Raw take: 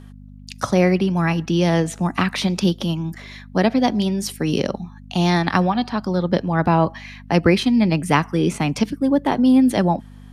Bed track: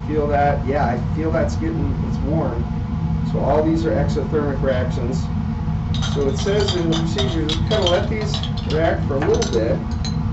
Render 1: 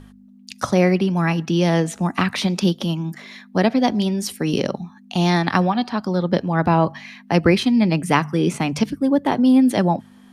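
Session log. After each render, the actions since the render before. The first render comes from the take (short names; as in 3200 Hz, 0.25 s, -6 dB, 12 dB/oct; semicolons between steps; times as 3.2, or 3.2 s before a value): de-hum 50 Hz, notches 3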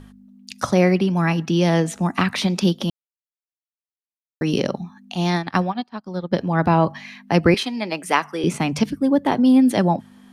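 2.9–4.41 mute; 5.15–6.38 upward expander 2.5:1, over -32 dBFS; 7.54–8.44 HPF 450 Hz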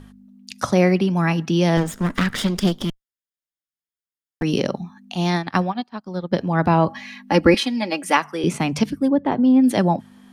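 1.77–4.43 minimum comb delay 0.59 ms; 6.88–8.17 comb 3.6 ms, depth 75%; 9.08–9.64 tape spacing loss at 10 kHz 25 dB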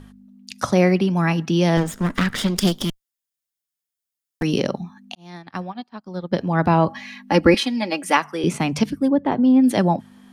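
2.56–4.47 high shelf 4200 Hz +9.5 dB; 5.15–6.48 fade in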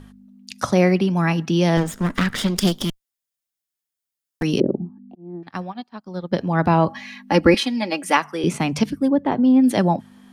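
4.6–5.43 synth low-pass 360 Hz, resonance Q 3.5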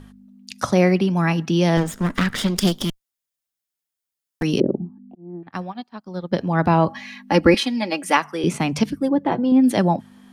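4.78–5.53 air absorption 480 m; 9–9.52 comb 6 ms, depth 48%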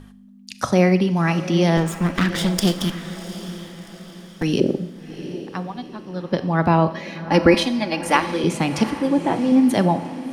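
diffused feedback echo 0.739 s, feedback 45%, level -12.5 dB; Schroeder reverb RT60 0.82 s, combs from 29 ms, DRR 12.5 dB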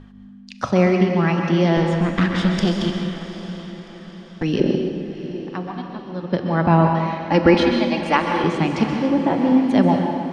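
air absorption 140 m; plate-style reverb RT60 1.4 s, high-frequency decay 0.9×, pre-delay 0.115 s, DRR 3.5 dB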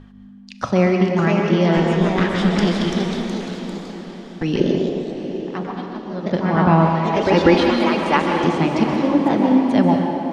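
echoes that change speed 0.621 s, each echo +2 st, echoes 3, each echo -6 dB; band-limited delay 0.376 s, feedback 63%, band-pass 510 Hz, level -11 dB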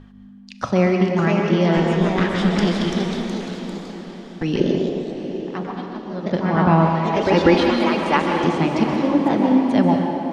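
gain -1 dB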